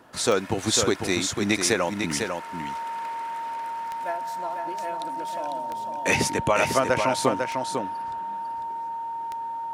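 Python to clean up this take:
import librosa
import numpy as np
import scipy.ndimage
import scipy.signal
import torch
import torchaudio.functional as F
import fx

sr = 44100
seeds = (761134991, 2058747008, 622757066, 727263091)

y = fx.fix_declick_ar(x, sr, threshold=10.0)
y = fx.notch(y, sr, hz=920.0, q=30.0)
y = fx.fix_echo_inverse(y, sr, delay_ms=499, level_db=-5.5)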